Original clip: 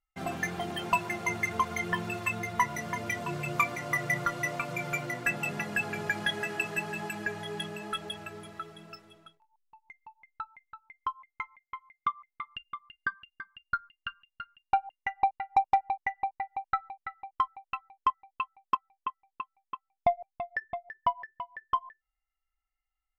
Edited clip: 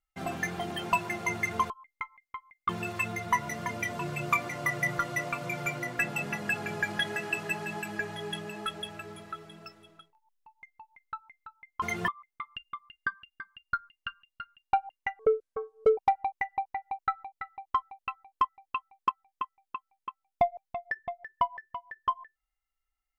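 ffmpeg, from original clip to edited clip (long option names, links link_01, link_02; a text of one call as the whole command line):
ffmpeg -i in.wav -filter_complex "[0:a]asplit=7[link_01][link_02][link_03][link_04][link_05][link_06][link_07];[link_01]atrim=end=1.702[link_08];[link_02]atrim=start=11.088:end=12.082[link_09];[link_03]atrim=start=1.958:end=11.092[link_10];[link_04]atrim=start=1.698:end=1.962[link_11];[link_05]atrim=start=12.078:end=15.194[link_12];[link_06]atrim=start=15.19:end=15.63,asetpts=PTS-STARTPTS,asetrate=24696,aresample=44100[link_13];[link_07]atrim=start=15.626[link_14];[link_08][link_09]acrossfade=duration=0.004:curve1=hsin:curve2=hsin[link_15];[link_15][link_10]acrossfade=duration=0.004:curve1=hsin:curve2=hsin[link_16];[link_16][link_11]acrossfade=duration=0.004:curve1=hsin:curve2=hsin[link_17];[link_17][link_12]acrossfade=duration=0.004:curve1=hsin:curve2=hsin[link_18];[link_18][link_13]acrossfade=duration=0.004:curve1=hsin:curve2=hsin[link_19];[link_19][link_14]acrossfade=duration=0.004:curve1=hsin:curve2=hsin" out.wav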